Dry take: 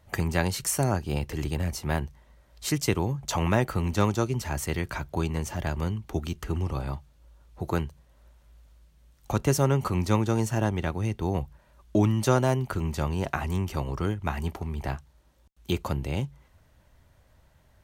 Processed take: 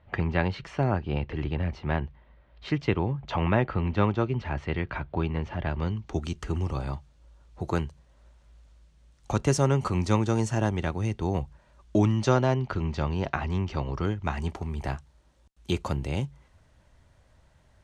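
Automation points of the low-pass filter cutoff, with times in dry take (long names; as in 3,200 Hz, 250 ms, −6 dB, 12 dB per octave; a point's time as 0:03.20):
low-pass filter 24 dB per octave
0:05.65 3,300 Hz
0:06.21 8,600 Hz
0:11.96 8,600 Hz
0:12.40 5,100 Hz
0:13.84 5,100 Hz
0:14.71 9,600 Hz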